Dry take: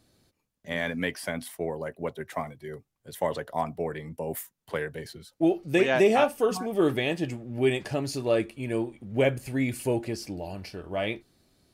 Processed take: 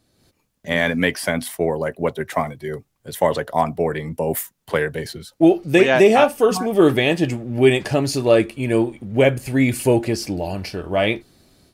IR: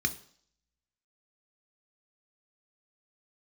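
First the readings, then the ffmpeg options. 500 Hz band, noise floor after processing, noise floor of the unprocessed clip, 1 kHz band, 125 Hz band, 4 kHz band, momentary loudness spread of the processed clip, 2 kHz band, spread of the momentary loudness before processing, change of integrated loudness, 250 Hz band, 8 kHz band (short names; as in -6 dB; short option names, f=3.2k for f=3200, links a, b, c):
+9.5 dB, -69 dBFS, -79 dBFS, +9.0 dB, +10.0 dB, +9.5 dB, 12 LU, +9.5 dB, 13 LU, +9.5 dB, +9.5 dB, +10.0 dB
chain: -af "dynaudnorm=f=160:g=3:m=11dB"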